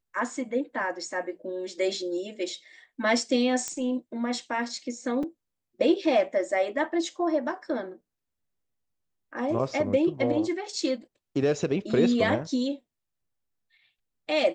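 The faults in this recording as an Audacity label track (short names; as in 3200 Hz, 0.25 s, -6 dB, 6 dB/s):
3.680000	3.680000	pop -16 dBFS
5.230000	5.230000	gap 4.3 ms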